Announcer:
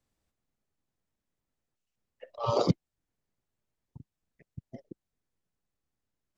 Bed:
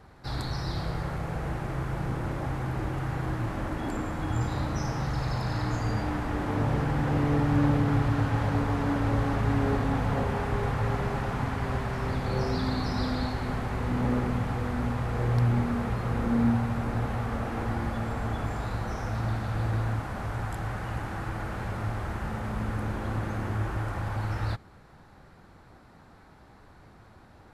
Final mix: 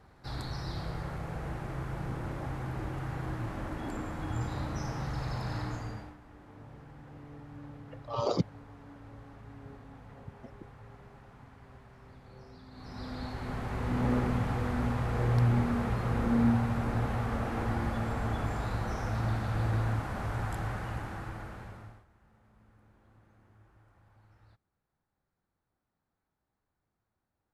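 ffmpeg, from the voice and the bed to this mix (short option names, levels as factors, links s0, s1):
-filter_complex "[0:a]adelay=5700,volume=0.668[s0];[1:a]volume=6.68,afade=t=out:st=5.57:d=0.59:silence=0.125893,afade=t=in:st=12.71:d=1.42:silence=0.0794328,afade=t=out:st=20.59:d=1.46:silence=0.0316228[s1];[s0][s1]amix=inputs=2:normalize=0"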